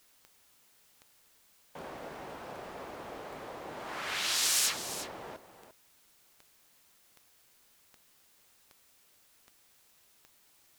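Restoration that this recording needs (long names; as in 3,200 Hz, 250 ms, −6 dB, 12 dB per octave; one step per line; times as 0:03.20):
click removal
broadband denoise 19 dB, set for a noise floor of −65 dBFS
echo removal 347 ms −12 dB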